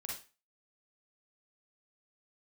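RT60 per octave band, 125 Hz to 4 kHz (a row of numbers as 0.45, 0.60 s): 0.30, 0.30, 0.30, 0.35, 0.35, 0.30 s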